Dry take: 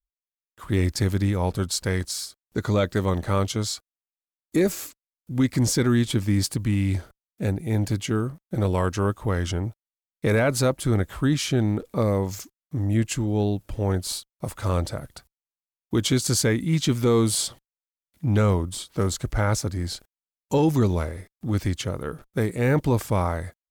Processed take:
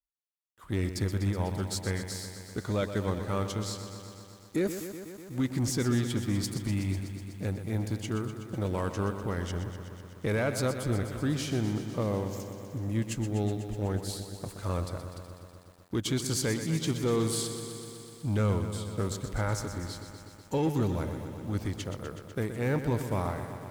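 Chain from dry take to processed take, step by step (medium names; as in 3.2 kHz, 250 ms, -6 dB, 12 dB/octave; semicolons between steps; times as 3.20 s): Chebyshev shaper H 7 -28 dB, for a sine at -12.5 dBFS; bit-crushed delay 124 ms, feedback 80%, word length 8-bit, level -10 dB; trim -8 dB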